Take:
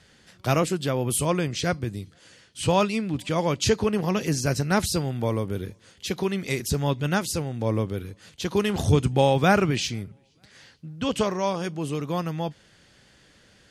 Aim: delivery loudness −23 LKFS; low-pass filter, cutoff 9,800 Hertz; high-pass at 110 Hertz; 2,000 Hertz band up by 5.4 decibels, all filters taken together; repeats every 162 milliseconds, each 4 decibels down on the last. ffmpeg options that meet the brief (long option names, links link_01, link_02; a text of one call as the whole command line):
ffmpeg -i in.wav -af "highpass=110,lowpass=9800,equalizer=frequency=2000:width_type=o:gain=7.5,aecho=1:1:162|324|486|648|810|972|1134|1296|1458:0.631|0.398|0.25|0.158|0.0994|0.0626|0.0394|0.0249|0.0157" out.wav